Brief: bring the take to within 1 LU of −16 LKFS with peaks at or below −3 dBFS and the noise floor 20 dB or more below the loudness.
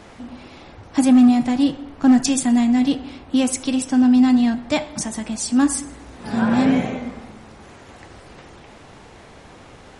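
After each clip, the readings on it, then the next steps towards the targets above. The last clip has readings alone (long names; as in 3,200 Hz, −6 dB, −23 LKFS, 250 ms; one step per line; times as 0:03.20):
share of clipped samples 0.7%; peaks flattened at −7.5 dBFS; integrated loudness −18.5 LKFS; sample peak −7.5 dBFS; target loudness −16.0 LKFS
→ clipped peaks rebuilt −7.5 dBFS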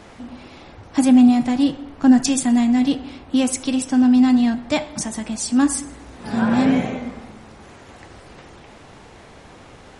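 share of clipped samples 0.0%; integrated loudness −18.0 LKFS; sample peak −3.5 dBFS; target loudness −16.0 LKFS
→ level +2 dB
brickwall limiter −3 dBFS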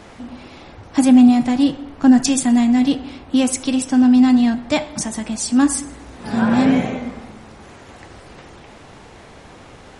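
integrated loudness −16.0 LKFS; sample peak −3.0 dBFS; background noise floor −42 dBFS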